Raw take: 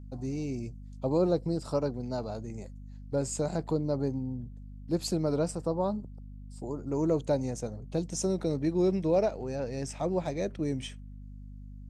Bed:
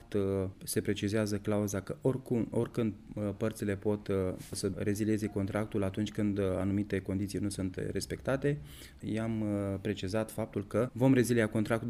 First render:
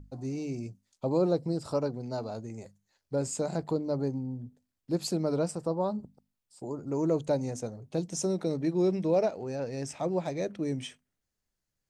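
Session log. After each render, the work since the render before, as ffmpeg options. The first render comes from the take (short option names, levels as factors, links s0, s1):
-af "bandreject=f=50:t=h:w=6,bandreject=f=100:t=h:w=6,bandreject=f=150:t=h:w=6,bandreject=f=200:t=h:w=6,bandreject=f=250:t=h:w=6"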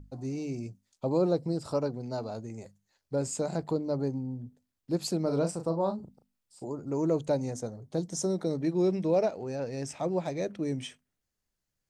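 -filter_complex "[0:a]asettb=1/sr,asplit=3[s0][s1][s2];[s0]atrim=end=5.224[s3];[s1]atrim=start=5.22:end=6.67,asetpts=PTS-STARTPTS,afade=t=in:d=0.004:c=qsin,afade=t=out:st=1.446:d=0.004:c=qsin,asplit=2[s4][s5];[s5]adelay=36,volume=0.422[s6];[s4][s6]amix=inputs=2:normalize=0,atrim=end_sample=63945[s7];[s2]atrim=start=6.666[s8];[s3][s7]acrossfade=d=0.004:c1=hsin:c2=qsin[s9];[s9][s8]acrossfade=d=0.004:c1=qsin:c2=hsin,asettb=1/sr,asplit=3[s10][s11][s12];[s10]atrim=end=7.524[s13];[s11]atrim=start=7.52:end=8.58,asetpts=PTS-STARTPTS,afade=t=in:d=0.004:c=qsin,afade=t=out:st=1.056:d=0.004:c=qsin,equalizer=f=2600:t=o:w=0.25:g=-13[s14];[s12]atrim=start=8.576[s15];[s13][s14]acrossfade=d=0.004:c1=hsin:c2=qsin[s16];[s16][s15]acrossfade=d=0.004:c1=qsin:c2=hsin"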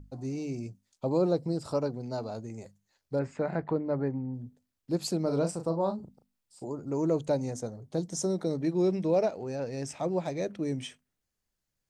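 -filter_complex "[0:a]asettb=1/sr,asplit=3[s0][s1][s2];[s0]atrim=end=3.194[s3];[s1]atrim=start=3.19:end=4.34,asetpts=PTS-STARTPTS,afade=t=in:d=0.004:c=qsin,afade=t=out:st=1.146:d=0.004:c=qsin,lowpass=f=1900:t=q:w=2.9[s4];[s2]atrim=start=4.336[s5];[s3][s4]acrossfade=d=0.004:c1=hsin:c2=qsin[s6];[s6][s5]acrossfade=d=0.004:c1=qsin:c2=hsin"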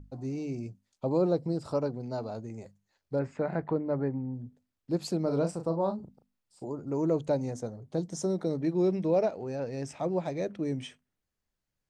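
-af "highshelf=f=4700:g=-8"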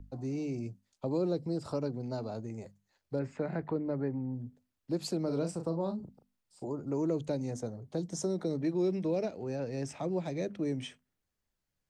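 -filter_complex "[0:a]acrossover=split=290|380|1800[s0][s1][s2][s3];[s0]alimiter=level_in=2.66:limit=0.0631:level=0:latency=1,volume=0.376[s4];[s2]acompressor=threshold=0.0112:ratio=6[s5];[s4][s1][s5][s3]amix=inputs=4:normalize=0"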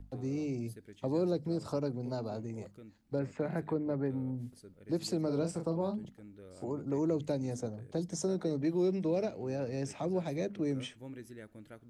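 -filter_complex "[1:a]volume=0.0891[s0];[0:a][s0]amix=inputs=2:normalize=0"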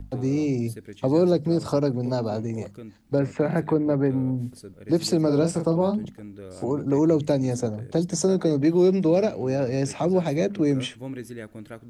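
-af "volume=3.76"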